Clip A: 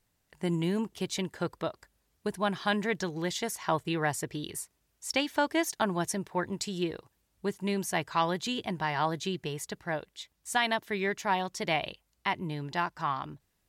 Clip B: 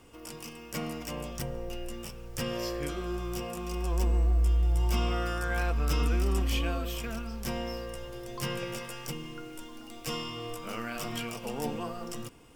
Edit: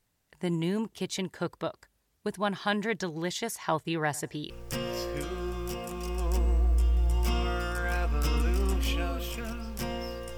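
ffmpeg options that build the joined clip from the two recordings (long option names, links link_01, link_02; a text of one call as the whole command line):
ffmpeg -i cue0.wav -i cue1.wav -filter_complex "[0:a]asettb=1/sr,asplit=3[link_01][link_02][link_03];[link_01]atrim=end=4.044[link_04];[link_02]atrim=start=4.04:end=4.5,asetpts=PTS-STARTPTS,afade=type=in:duration=0.004:curve=qsin,afade=type=out:start_time=0.456:duration=0.004:curve=qsin,asplit=2[link_05][link_06];[link_06]adelay=96,lowpass=frequency=3700:poles=1,volume=-23dB,asplit=2[link_07][link_08];[link_08]adelay=96,lowpass=frequency=3700:poles=1,volume=0.36[link_09];[link_05][link_07][link_09]amix=inputs=3:normalize=0,atrim=end_sample=20286[link_10];[link_03]atrim=start=4.496[link_11];[link_04][link_10]acrossfade=duration=0.004:curve1=hsin:curve2=qsin[link_12];[link_12][link_11]acrossfade=duration=0.004:curve1=qsin:curve2=hsin,apad=whole_dur=10.37,atrim=end=10.37,atrim=end=4.502[link_13];[1:a]atrim=start=2.158:end=8.03[link_14];[link_13][link_14]acrossfade=duration=0.004:curve1=hsin:curve2=hsin" out.wav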